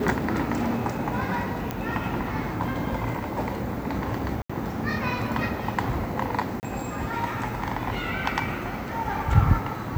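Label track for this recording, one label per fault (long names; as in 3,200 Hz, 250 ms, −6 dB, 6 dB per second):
1.710000	1.710000	click −14 dBFS
4.420000	4.500000	drop-out 75 ms
6.600000	6.630000	drop-out 29 ms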